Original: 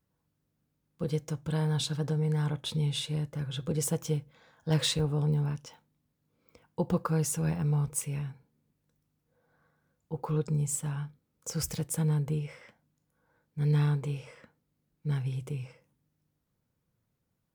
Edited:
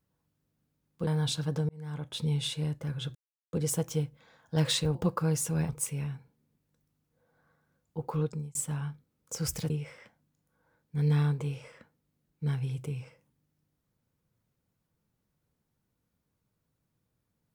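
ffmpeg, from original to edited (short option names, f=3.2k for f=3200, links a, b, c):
-filter_complex "[0:a]asplit=8[a][b][c][d][e][f][g][h];[a]atrim=end=1.072[i];[b]atrim=start=1.588:end=2.21,asetpts=PTS-STARTPTS,afade=t=out:st=0.618:d=0.004:c=hsin[j];[c]atrim=start=2.21:end=3.67,asetpts=PTS-STARTPTS,afade=t=in:d=0.58,afade=t=out:st=1.456:d=0.004:c=hsin,apad=pad_dur=0.38[k];[d]atrim=start=3.67:end=5.092,asetpts=PTS-STARTPTS,afade=t=in:d=0.004:c=hsin[l];[e]atrim=start=6.828:end=7.572[m];[f]atrim=start=7.838:end=10.7,asetpts=PTS-STARTPTS,afade=t=out:st=2.512:d=0.35[n];[g]atrim=start=10.7:end=11.852,asetpts=PTS-STARTPTS,afade=t=in:d=0.004:c=hsin[o];[h]atrim=start=12.328[p];[j][k][l]concat=n=3:v=0:a=1[q];[i][q]acrossfade=d=0.004:c1=hsin:c2=hsin[r];[r][m]acrossfade=d=0.004:c1=hsin:c2=hsin[s];[n][o]concat=n=2:v=0:a=1[t];[s][t]acrossfade=d=0.004:c1=hsin:c2=hsin[u];[u][p]acrossfade=d=0.004:c1=hsin:c2=hsin"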